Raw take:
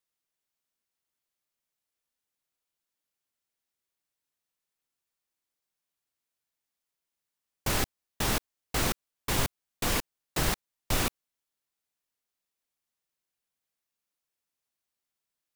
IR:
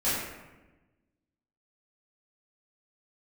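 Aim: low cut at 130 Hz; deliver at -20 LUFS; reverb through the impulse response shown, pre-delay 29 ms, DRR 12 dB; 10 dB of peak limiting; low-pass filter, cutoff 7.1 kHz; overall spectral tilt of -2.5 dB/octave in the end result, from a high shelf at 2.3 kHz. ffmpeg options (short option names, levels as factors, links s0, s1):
-filter_complex "[0:a]highpass=130,lowpass=7100,highshelf=f=2300:g=3,alimiter=level_in=1.19:limit=0.0631:level=0:latency=1,volume=0.841,asplit=2[s0][s1];[1:a]atrim=start_sample=2205,adelay=29[s2];[s1][s2]afir=irnorm=-1:irlink=0,volume=0.0708[s3];[s0][s3]amix=inputs=2:normalize=0,volume=7.94"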